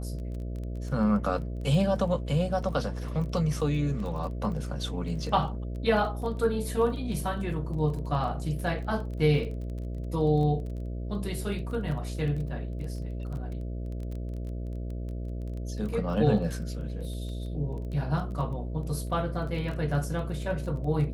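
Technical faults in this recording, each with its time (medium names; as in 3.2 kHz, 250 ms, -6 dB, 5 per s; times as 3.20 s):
buzz 60 Hz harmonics 11 -34 dBFS
crackle 16 per s -36 dBFS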